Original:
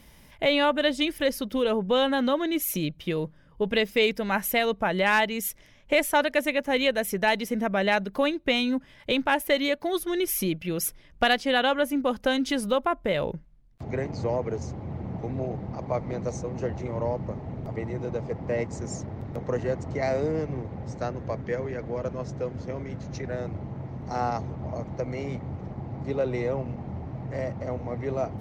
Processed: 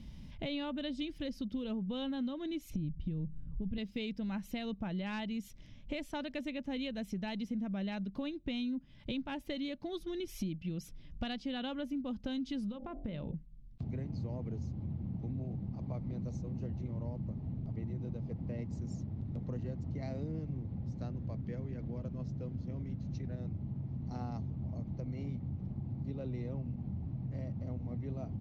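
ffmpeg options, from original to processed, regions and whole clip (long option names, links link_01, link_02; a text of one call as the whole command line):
ffmpeg -i in.wav -filter_complex "[0:a]asettb=1/sr,asplit=3[link_01][link_02][link_03];[link_01]atrim=end=2.704[link_04];[link_02]atrim=start=2.7:end=3.78,asetpts=PTS-STARTPTS,afade=type=in:duration=0.004:curve=qsin,afade=type=out:start_time=1.076:duration=0.004:curve=qsin,aemphasis=mode=reproduction:type=riaa,acompressor=threshold=-29dB:ratio=2:attack=3.2:release=140:knee=1:detection=peak[link_05];[link_03]atrim=start=3.776[link_06];[link_04][link_05]acrossfade=duration=0.004:curve1=hsin:curve2=qsin[link_07];[link_07][link_06]acrossfade=duration=0.004:curve1=qsin:curve2=hsin,asettb=1/sr,asplit=3[link_08][link_09][link_10];[link_08]atrim=end=12.694[link_11];[link_09]atrim=start=12.69:end=13.34,asetpts=PTS-STARTPTS,afade=type=in:duration=0.004:curve=qsin,afade=type=out:start_time=0.646:duration=0.004:curve=qsin,lowpass=frequency=2700:poles=1,bandreject=frequency=47.25:width_type=h:width=4,bandreject=frequency=94.5:width_type=h:width=4,bandreject=frequency=141.75:width_type=h:width=4,bandreject=frequency=189:width_type=h:width=4,bandreject=frequency=236.25:width_type=h:width=4,bandreject=frequency=283.5:width_type=h:width=4,bandreject=frequency=330.75:width_type=h:width=4,bandreject=frequency=378:width_type=h:width=4,bandreject=frequency=425.25:width_type=h:width=4,bandreject=frequency=472.5:width_type=h:width=4,bandreject=frequency=519.75:width_type=h:width=4,bandreject=frequency=567:width_type=h:width=4,bandreject=frequency=614.25:width_type=h:width=4,bandreject=frequency=661.5:width_type=h:width=4,bandreject=frequency=708.75:width_type=h:width=4,bandreject=frequency=756:width_type=h:width=4,bandreject=frequency=803.25:width_type=h:width=4,acompressor=threshold=-26dB:ratio=6:attack=3.2:release=140:knee=1:detection=peak[link_12];[link_10]atrim=start=13.336[link_13];[link_11][link_12]acrossfade=duration=0.004:curve1=hsin:curve2=qsin[link_14];[link_14][link_13]acrossfade=duration=0.004:curve1=qsin:curve2=hsin,firequalizer=gain_entry='entry(220,0);entry(420,-15);entry(1800,-19);entry(2700,-12);entry(4100,-10);entry(11000,-29)':delay=0.05:min_phase=1,acompressor=threshold=-46dB:ratio=3,volume=6.5dB" out.wav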